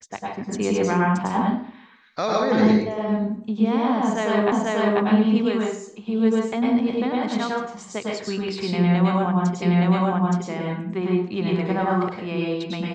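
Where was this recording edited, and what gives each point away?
0:04.52: the same again, the last 0.49 s
0:09.62: the same again, the last 0.87 s

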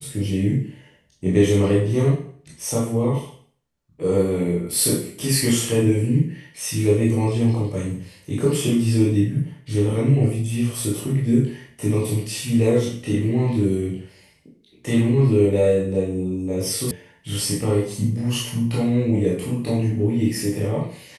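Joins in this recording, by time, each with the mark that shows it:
0:16.91: cut off before it has died away

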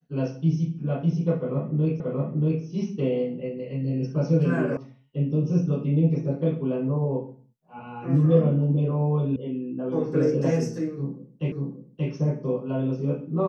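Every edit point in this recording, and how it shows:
0:02.00: the same again, the last 0.63 s
0:04.77: cut off before it has died away
0:09.36: cut off before it has died away
0:11.52: the same again, the last 0.58 s

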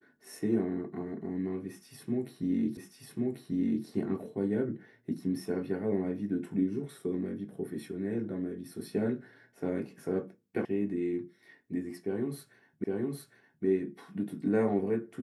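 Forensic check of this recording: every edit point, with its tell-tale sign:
0:02.77: the same again, the last 1.09 s
0:10.65: cut off before it has died away
0:12.84: the same again, the last 0.81 s

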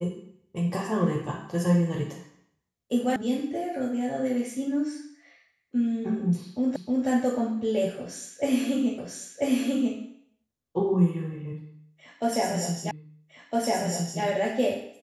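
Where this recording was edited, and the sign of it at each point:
0:03.16: cut off before it has died away
0:06.76: the same again, the last 0.31 s
0:08.98: the same again, the last 0.99 s
0:12.91: the same again, the last 1.31 s

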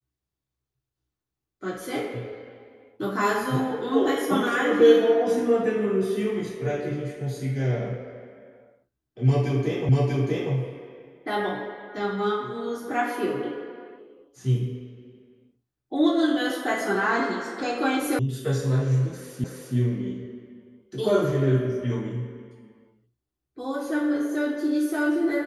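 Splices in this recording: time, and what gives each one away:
0:09.89: the same again, the last 0.64 s
0:18.19: cut off before it has died away
0:19.44: the same again, the last 0.32 s

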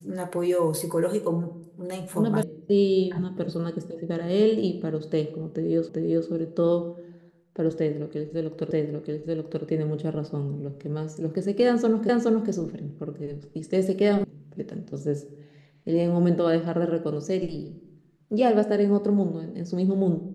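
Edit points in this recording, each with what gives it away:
0:02.43: cut off before it has died away
0:05.89: the same again, the last 0.39 s
0:08.71: the same again, the last 0.93 s
0:12.09: the same again, the last 0.42 s
0:14.24: cut off before it has died away

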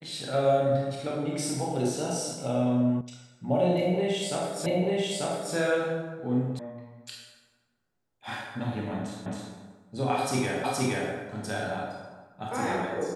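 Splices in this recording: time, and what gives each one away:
0:03.01: cut off before it has died away
0:04.66: the same again, the last 0.89 s
0:06.59: cut off before it has died away
0:09.26: the same again, the last 0.27 s
0:10.64: the same again, the last 0.47 s

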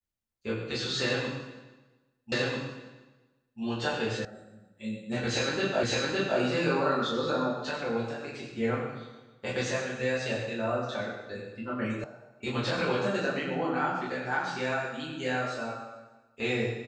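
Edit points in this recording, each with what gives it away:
0:02.32: the same again, the last 1.29 s
0:04.25: cut off before it has died away
0:05.83: the same again, the last 0.56 s
0:12.04: cut off before it has died away

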